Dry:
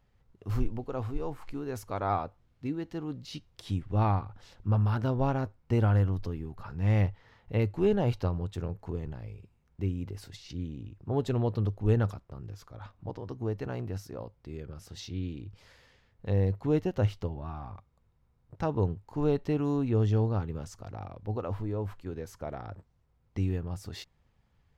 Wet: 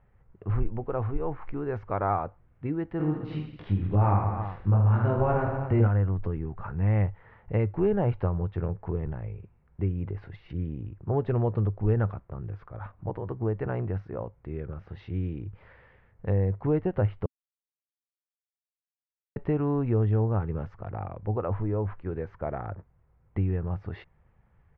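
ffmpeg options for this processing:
ffmpeg -i in.wav -filter_complex "[0:a]asplit=3[link_01][link_02][link_03];[link_01]afade=type=out:start_time=2.99:duration=0.02[link_04];[link_02]aecho=1:1:20|46|79.8|123.7|180.9|255.1|351.7:0.794|0.631|0.501|0.398|0.316|0.251|0.2,afade=type=in:start_time=2.99:duration=0.02,afade=type=out:start_time=5.87:duration=0.02[link_05];[link_03]afade=type=in:start_time=5.87:duration=0.02[link_06];[link_04][link_05][link_06]amix=inputs=3:normalize=0,asplit=3[link_07][link_08][link_09];[link_07]atrim=end=17.26,asetpts=PTS-STARTPTS,afade=type=out:start_time=17.256:duration=0.004:curve=hsin[link_10];[link_08]atrim=start=17.26:end=19.36,asetpts=PTS-STARTPTS,volume=0[link_11];[link_09]atrim=start=19.36,asetpts=PTS-STARTPTS,afade=type=in:duration=0.004:curve=hsin[link_12];[link_10][link_11][link_12]concat=n=3:v=0:a=1,lowpass=frequency=2100:width=0.5412,lowpass=frequency=2100:width=1.3066,equalizer=frequency=260:width=7.4:gain=-9.5,acompressor=threshold=-30dB:ratio=2,volume=6dB" out.wav

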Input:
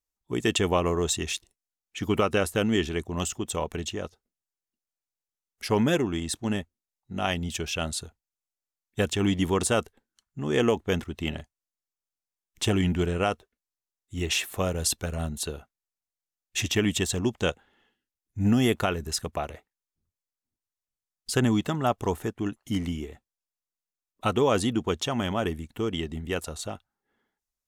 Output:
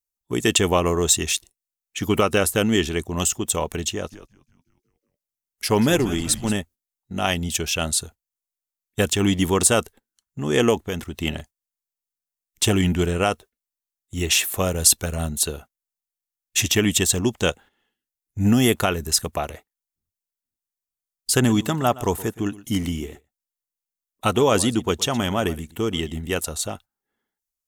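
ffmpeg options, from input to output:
ffmpeg -i in.wav -filter_complex "[0:a]asettb=1/sr,asplit=3[link_01][link_02][link_03];[link_01]atrim=end=3.924[link_04];[link_02]atrim=start=3.92:end=6.54,asetpts=PTS-STARTPTS,afade=type=in:duration=0.004:curve=qsin,afade=type=out:start_time=2.616:duration=0.004:curve=qsin,asplit=7[link_05][link_06][link_07][link_08][link_09][link_10][link_11];[link_06]adelay=182,afreqshift=-110,volume=-14dB[link_12];[link_07]adelay=364,afreqshift=-220,volume=-18.7dB[link_13];[link_08]adelay=546,afreqshift=-330,volume=-23.5dB[link_14];[link_09]adelay=728,afreqshift=-440,volume=-28.2dB[link_15];[link_10]adelay=910,afreqshift=-550,volume=-32.9dB[link_16];[link_11]adelay=1092,afreqshift=-660,volume=-37.7dB[link_17];[link_05][link_12][link_13][link_14][link_15][link_16][link_17]amix=inputs=7:normalize=0,atrim=end_sample=115542[link_18];[link_03]atrim=start=6.536[link_19];[link_04][link_18]acrossfade=duration=0.004:curve1=hsin:curve2=qsin[link_20];[link_20][link_19]acrossfade=duration=0.004:curve1=qsin:curve2=hsin,asettb=1/sr,asplit=3[link_21][link_22][link_23];[link_21]atrim=end=10.784[link_24];[link_22]atrim=start=10.78:end=11.22,asetpts=PTS-STARTPTS,afade=type=in:duration=0.004:curve=qsin,afade=type=out:start_time=0.436:duration=0.004:curve=qsin,acompressor=threshold=-32dB:ratio=2:attack=3.2:release=140:knee=1:detection=peak[link_25];[link_23]atrim=start=11.216[link_26];[link_24][link_25]acrossfade=duration=0.004:curve1=hsin:curve2=qsin[link_27];[link_27][link_26]acrossfade=duration=0.004:curve1=qsin:curve2=hsin,asettb=1/sr,asplit=3[link_28][link_29][link_30];[link_28]atrim=end=21.334[link_31];[link_29]atrim=start=21.33:end=26.41,asetpts=PTS-STARTPTS,afade=type=in:duration=0.004:curve=qsin,afade=type=out:start_time=5.076:duration=0.004:curve=qsin,aecho=1:1:119:0.119,atrim=end_sample=224028[link_32];[link_30]atrim=start=26.406[link_33];[link_31][link_32]acrossfade=duration=0.004:curve1=hsin:curve2=qsin[link_34];[link_34][link_33]acrossfade=duration=0.004:curve1=qsin:curve2=hsin,agate=range=-10dB:threshold=-47dB:ratio=16:detection=peak,highshelf=frequency=6800:gain=12,volume=4.5dB" out.wav

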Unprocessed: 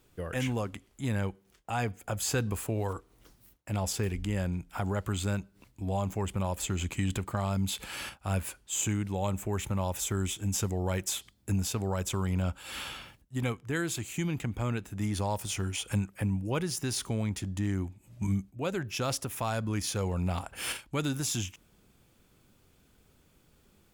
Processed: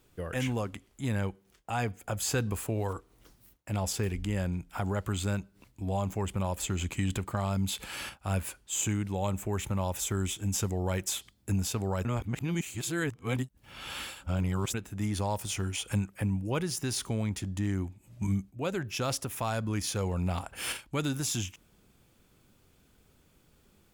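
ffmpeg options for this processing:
ffmpeg -i in.wav -filter_complex "[0:a]asplit=3[link_01][link_02][link_03];[link_01]atrim=end=12.052[link_04];[link_02]atrim=start=12.048:end=14.742,asetpts=PTS-STARTPTS,areverse[link_05];[link_03]atrim=start=14.738[link_06];[link_04][link_05]acrossfade=duration=0.004:curve1=hsin:curve2=hsin[link_07];[link_07][link_06]acrossfade=duration=0.004:curve1=hsin:curve2=hsin" out.wav

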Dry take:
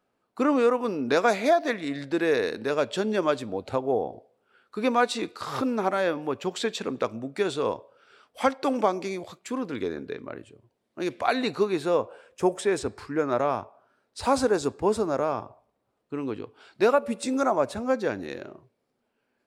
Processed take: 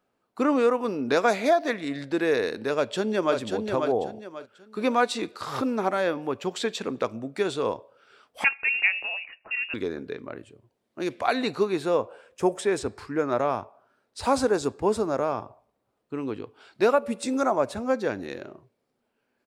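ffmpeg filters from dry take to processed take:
ffmpeg -i in.wav -filter_complex "[0:a]asplit=2[link_01][link_02];[link_02]afade=type=in:start_time=2.75:duration=0.01,afade=type=out:start_time=3.37:duration=0.01,aecho=0:1:540|1080|1620|2160:0.562341|0.168702|0.0506107|0.0151832[link_03];[link_01][link_03]amix=inputs=2:normalize=0,asettb=1/sr,asplit=3[link_04][link_05][link_06];[link_04]atrim=end=8.444[link_07];[link_05]atrim=start=8.44:end=9.74,asetpts=PTS-STARTPTS,afade=type=in:duration=0.004:curve=qsin,afade=type=out:start_time=1.296:duration=0.004:curve=qsin,lowpass=frequency=2600:width_type=q:width=0.5098,lowpass=frequency=2600:width_type=q:width=0.6013,lowpass=frequency=2600:width_type=q:width=0.9,lowpass=frequency=2600:width_type=q:width=2.563,afreqshift=-3000[link_08];[link_06]atrim=start=9.736[link_09];[link_07][link_08]acrossfade=duration=0.004:curve1=hsin:curve2=qsin[link_10];[link_10][link_09]acrossfade=duration=0.004:curve1=qsin:curve2=hsin" out.wav

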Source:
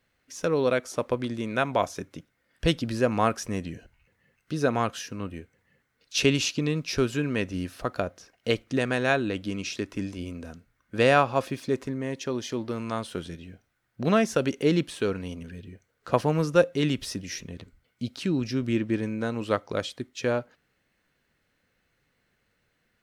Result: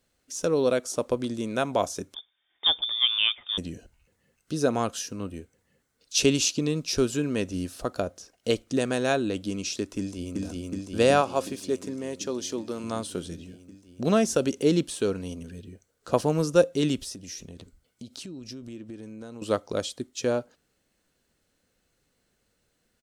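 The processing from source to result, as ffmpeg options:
ffmpeg -i in.wav -filter_complex "[0:a]asettb=1/sr,asplit=3[link_01][link_02][link_03];[link_01]atrim=end=2.144[link_04];[link_02]atrim=start=2.14:end=3.58,asetpts=PTS-STARTPTS,afade=type=in:duration=0.004:curve=qsin,afade=type=out:start_time=1.436:duration=0.004:curve=qsin,lowpass=frequency=3100:width_type=q:width=0.5098,lowpass=frequency=3100:width_type=q:width=0.6013,lowpass=frequency=3100:width_type=q:width=0.9,lowpass=frequency=3100:width_type=q:width=2.563,afreqshift=-3700[link_05];[link_03]atrim=start=3.576[link_06];[link_04][link_05]acrossfade=duration=0.004:curve1=hsin:curve2=qsin[link_07];[link_07][link_06]acrossfade=duration=0.004:curve1=qsin:curve2=hsin,asplit=2[link_08][link_09];[link_09]afade=type=in:start_time=9.98:duration=0.01,afade=type=out:start_time=10.42:duration=0.01,aecho=0:1:370|740|1110|1480|1850|2220|2590|2960|3330|3700|4070|4440:0.944061|0.755249|0.604199|0.483359|0.386687|0.30935|0.24748|0.197984|0.158387|0.12671|0.101368|0.0810942[link_10];[link_08][link_10]amix=inputs=2:normalize=0,asettb=1/sr,asplit=3[link_11][link_12][link_13];[link_11]atrim=end=11.214[link_14];[link_12]atrim=start=11.21:end=12.84,asetpts=PTS-STARTPTS,afade=type=in:duration=0.004:curve=qsin,afade=type=out:start_time=1.626:duration=0.004:curve=qsin,highpass=frequency=270:poles=1[link_15];[link_13]atrim=start=12.836[link_16];[link_14][link_15]acrossfade=duration=0.004:curve1=hsin:curve2=qsin[link_17];[link_17][link_16]acrossfade=duration=0.004:curve1=qsin:curve2=hsin,asettb=1/sr,asplit=3[link_18][link_19][link_20];[link_18]atrim=end=16.994[link_21];[link_19]atrim=start=16.99:end=19.42,asetpts=PTS-STARTPTS,afade=type=in:duration=0.004:curve=qsin,afade=type=out:start_time=2.426:duration=0.004:curve=qsin,acompressor=threshold=-38dB:ratio=6:attack=3.2:release=140:knee=1:detection=peak[link_22];[link_20]atrim=start=19.416[link_23];[link_21][link_22]acrossfade=duration=0.004:curve1=hsin:curve2=qsin[link_24];[link_24][link_23]acrossfade=duration=0.004:curve1=qsin:curve2=hsin,equalizer=frequency=125:width_type=o:width=1:gain=-5,equalizer=frequency=1000:width_type=o:width=1:gain=-3,equalizer=frequency=2000:width_type=o:width=1:gain=-9,equalizer=frequency=8000:width_type=o:width=1:gain=7,volume=2dB" out.wav

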